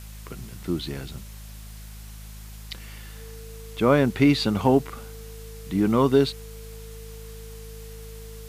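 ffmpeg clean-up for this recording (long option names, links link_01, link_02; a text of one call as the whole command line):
ffmpeg -i in.wav -af "adeclick=threshold=4,bandreject=frequency=52.8:width_type=h:width=4,bandreject=frequency=105.6:width_type=h:width=4,bandreject=frequency=158.4:width_type=h:width=4,bandreject=frequency=211.2:width_type=h:width=4,bandreject=frequency=450:width=30,afwtdn=0.004" out.wav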